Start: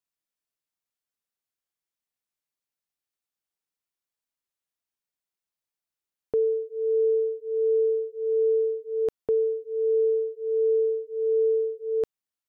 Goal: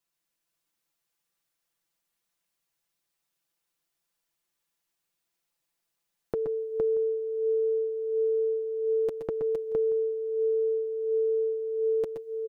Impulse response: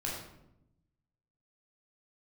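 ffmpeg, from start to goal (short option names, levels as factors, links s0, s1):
-af "aecho=1:1:5.9:0.83,acompressor=threshold=0.0224:ratio=4,aecho=1:1:122|129|462|630:0.422|0.251|0.708|0.106,volume=1.58"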